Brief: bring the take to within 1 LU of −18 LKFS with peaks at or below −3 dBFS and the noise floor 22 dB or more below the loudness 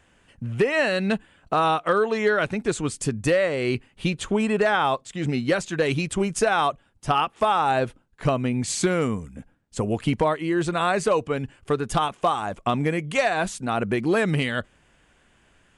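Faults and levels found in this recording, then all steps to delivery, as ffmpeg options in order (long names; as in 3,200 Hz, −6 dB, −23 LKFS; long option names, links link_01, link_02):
integrated loudness −24.0 LKFS; sample peak −11.0 dBFS; target loudness −18.0 LKFS
→ -af "volume=6dB"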